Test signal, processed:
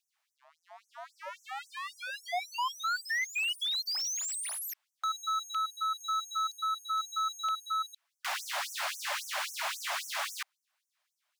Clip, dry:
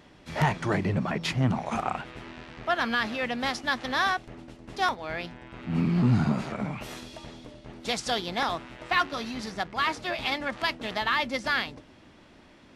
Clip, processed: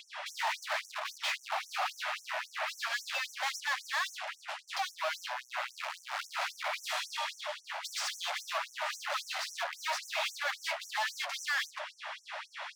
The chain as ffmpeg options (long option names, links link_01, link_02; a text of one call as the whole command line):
ffmpeg -i in.wav -filter_complex "[0:a]asplit=2[link_01][link_02];[link_02]highpass=frequency=720:poles=1,volume=35dB,asoftclip=type=tanh:threshold=-12dB[link_03];[link_01][link_03]amix=inputs=2:normalize=0,lowpass=frequency=1300:poles=1,volume=-6dB,volume=25dB,asoftclip=hard,volume=-25dB,afftfilt=real='re*gte(b*sr/1024,540*pow(5700/540,0.5+0.5*sin(2*PI*3.7*pts/sr)))':imag='im*gte(b*sr/1024,540*pow(5700/540,0.5+0.5*sin(2*PI*3.7*pts/sr)))':win_size=1024:overlap=0.75,volume=-4dB" out.wav